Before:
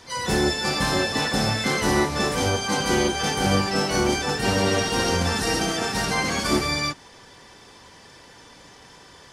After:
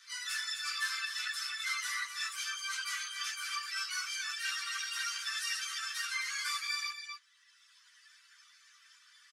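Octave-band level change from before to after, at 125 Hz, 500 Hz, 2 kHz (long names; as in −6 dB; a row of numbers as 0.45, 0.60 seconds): below −40 dB, below −40 dB, −9.0 dB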